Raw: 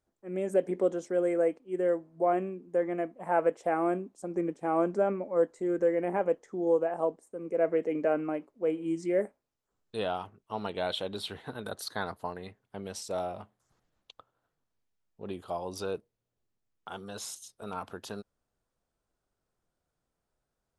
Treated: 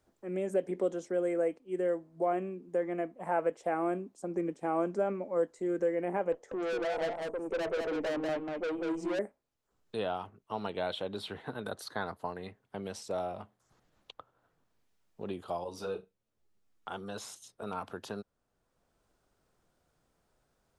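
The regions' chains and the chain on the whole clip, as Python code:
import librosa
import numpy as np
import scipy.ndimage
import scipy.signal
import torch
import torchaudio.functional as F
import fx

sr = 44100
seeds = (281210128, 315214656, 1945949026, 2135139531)

y = fx.chain(x, sr, fx.peak_eq(hz=610.0, db=9.5, octaves=1.4),
    fx.tube_stage(drive_db=30.0, bias=0.3),
    fx.echo_single(ms=192, db=-3.5), at=(6.32, 9.19))
y = fx.chain(y, sr, fx.room_flutter(wall_m=6.3, rt60_s=0.2),
    fx.ensemble(), at=(15.64, 16.88))
y = fx.high_shelf(y, sr, hz=9100.0, db=-4.5)
y = fx.band_squash(y, sr, depth_pct=40)
y = y * 10.0 ** (-2.5 / 20.0)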